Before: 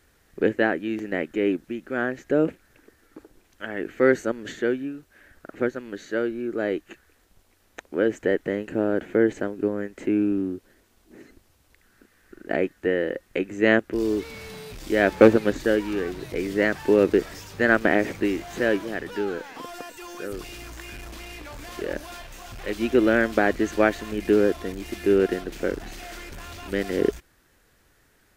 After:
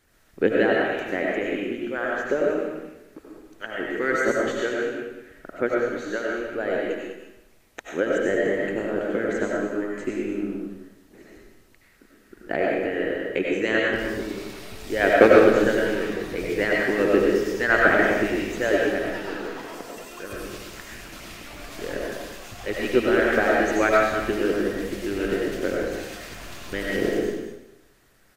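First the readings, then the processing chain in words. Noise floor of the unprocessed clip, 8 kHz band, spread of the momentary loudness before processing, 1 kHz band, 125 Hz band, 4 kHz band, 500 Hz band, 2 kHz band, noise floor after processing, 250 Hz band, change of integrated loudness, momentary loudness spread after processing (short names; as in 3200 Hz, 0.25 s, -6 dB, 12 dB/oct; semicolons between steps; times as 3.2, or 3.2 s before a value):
-62 dBFS, +3.0 dB, 18 LU, +4.0 dB, -1.5 dB, +3.0 dB, +1.0 dB, +3.5 dB, -57 dBFS, -1.5 dB, +1.0 dB, 18 LU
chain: echo 0.202 s -9 dB; harmonic-percussive split harmonic -16 dB; digital reverb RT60 0.86 s, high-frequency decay 0.95×, pre-delay 55 ms, DRR -3 dB; gain +1.5 dB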